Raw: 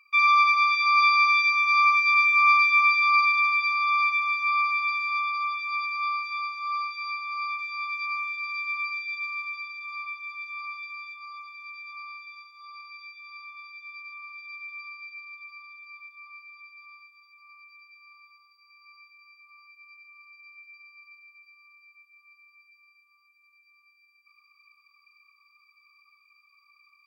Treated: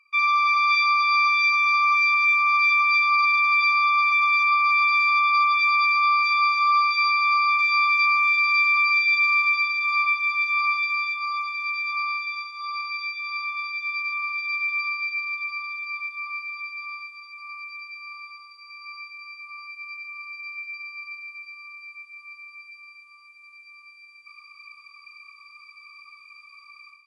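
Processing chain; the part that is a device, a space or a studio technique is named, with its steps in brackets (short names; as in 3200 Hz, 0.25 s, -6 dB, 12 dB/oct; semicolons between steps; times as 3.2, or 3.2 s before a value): low-bitrate web radio (AGC gain up to 16 dB; limiter -12 dBFS, peak gain reduction 11 dB; gain -2 dB; AAC 48 kbps 24000 Hz)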